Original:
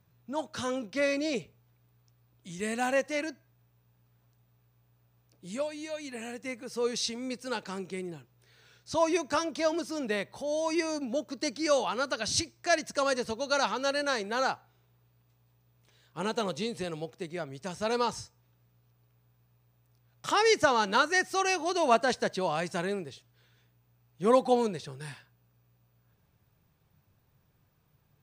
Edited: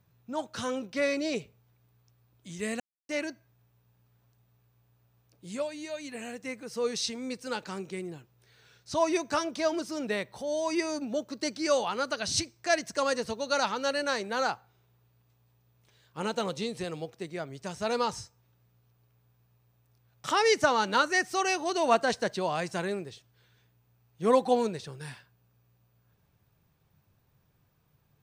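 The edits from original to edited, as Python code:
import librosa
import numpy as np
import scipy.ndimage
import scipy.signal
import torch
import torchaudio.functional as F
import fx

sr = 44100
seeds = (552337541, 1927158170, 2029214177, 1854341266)

y = fx.edit(x, sr, fx.silence(start_s=2.8, length_s=0.29), tone=tone)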